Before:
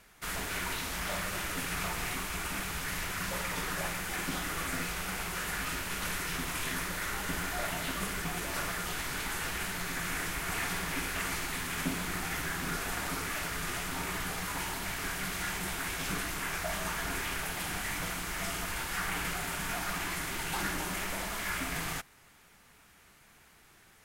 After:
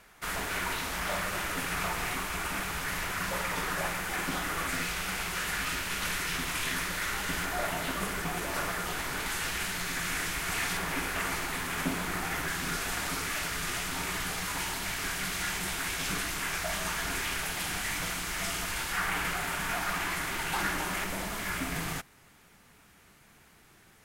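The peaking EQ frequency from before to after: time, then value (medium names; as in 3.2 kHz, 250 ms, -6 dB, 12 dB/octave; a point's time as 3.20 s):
peaking EQ +4.5 dB 2.8 oct
940 Hz
from 4.69 s 3.2 kHz
from 7.45 s 650 Hz
from 9.26 s 4.5 kHz
from 10.77 s 750 Hz
from 12.48 s 4.8 kHz
from 18.92 s 1.3 kHz
from 21.04 s 190 Hz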